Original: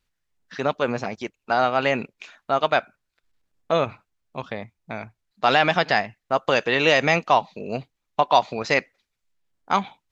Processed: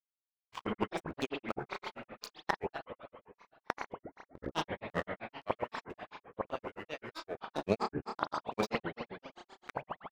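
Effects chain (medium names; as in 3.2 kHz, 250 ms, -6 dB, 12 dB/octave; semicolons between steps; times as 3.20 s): high-pass 85 Hz 12 dB/octave; crossover distortion -39.5 dBFS; inverted gate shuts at -12 dBFS, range -26 dB; spring tank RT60 2.1 s, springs 50 ms, chirp 30 ms, DRR 2 dB; granulator, grains 7.7 per s, spray 19 ms, pitch spread up and down by 12 st; trim +3.5 dB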